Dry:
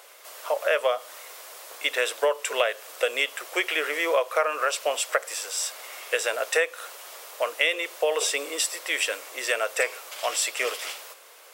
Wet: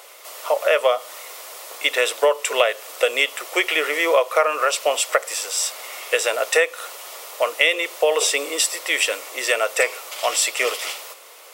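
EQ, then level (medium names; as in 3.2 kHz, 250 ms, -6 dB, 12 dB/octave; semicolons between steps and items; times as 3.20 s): band-stop 1.6 kHz, Q 8.4; +6.0 dB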